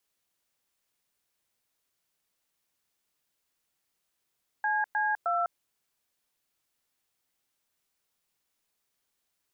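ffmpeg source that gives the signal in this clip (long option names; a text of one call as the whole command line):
ffmpeg -f lavfi -i "aevalsrc='0.0422*clip(min(mod(t,0.309),0.202-mod(t,0.309))/0.002,0,1)*(eq(floor(t/0.309),0)*(sin(2*PI*852*mod(t,0.309))+sin(2*PI*1633*mod(t,0.309)))+eq(floor(t/0.309),1)*(sin(2*PI*852*mod(t,0.309))+sin(2*PI*1633*mod(t,0.309)))+eq(floor(t/0.309),2)*(sin(2*PI*697*mod(t,0.309))+sin(2*PI*1336*mod(t,0.309))))':duration=0.927:sample_rate=44100" out.wav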